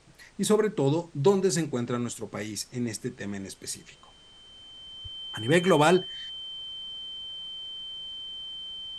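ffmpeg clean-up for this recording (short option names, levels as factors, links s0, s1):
-af "bandreject=f=3100:w=30,agate=range=0.0891:threshold=0.00562"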